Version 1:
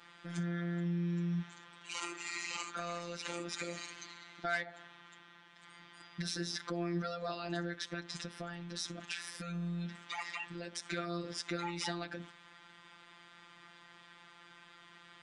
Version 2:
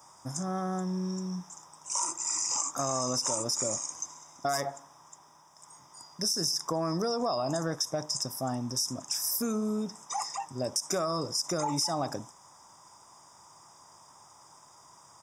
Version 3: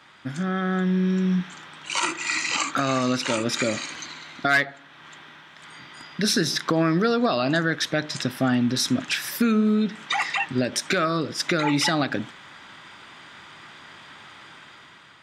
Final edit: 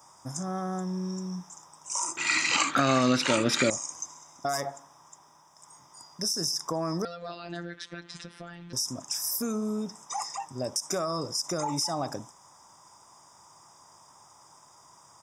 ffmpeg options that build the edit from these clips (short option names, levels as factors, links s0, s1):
-filter_complex "[1:a]asplit=3[s0][s1][s2];[s0]atrim=end=2.172[s3];[2:a]atrim=start=2.168:end=3.702[s4];[s1]atrim=start=3.698:end=7.052[s5];[0:a]atrim=start=7.048:end=8.732[s6];[s2]atrim=start=8.728[s7];[s3][s4]acrossfade=d=0.004:c1=hsin:c2=hsin[s8];[s8][s5]acrossfade=d=0.004:c1=hsin:c2=hsin[s9];[s9][s6]acrossfade=d=0.004:c1=hsin:c2=hsin[s10];[s10][s7]acrossfade=d=0.004:c1=hsin:c2=hsin"